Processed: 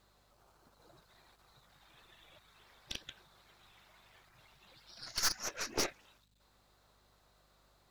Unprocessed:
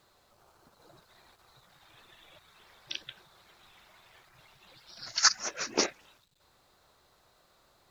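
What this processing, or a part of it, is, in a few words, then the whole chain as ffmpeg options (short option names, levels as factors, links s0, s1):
valve amplifier with mains hum: -af "aeval=exprs='(tanh(22.4*val(0)+0.75)-tanh(0.75))/22.4':c=same,aeval=exprs='val(0)+0.000224*(sin(2*PI*50*n/s)+sin(2*PI*2*50*n/s)/2+sin(2*PI*3*50*n/s)/3+sin(2*PI*4*50*n/s)/4+sin(2*PI*5*50*n/s)/5)':c=same"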